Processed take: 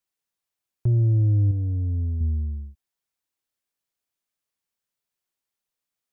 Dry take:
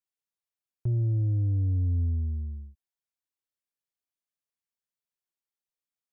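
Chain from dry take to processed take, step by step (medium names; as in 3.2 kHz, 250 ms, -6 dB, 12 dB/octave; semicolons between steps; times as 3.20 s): 1.51–2.21 s: peaking EQ 130 Hz -6.5 dB 2.8 oct; trim +6.5 dB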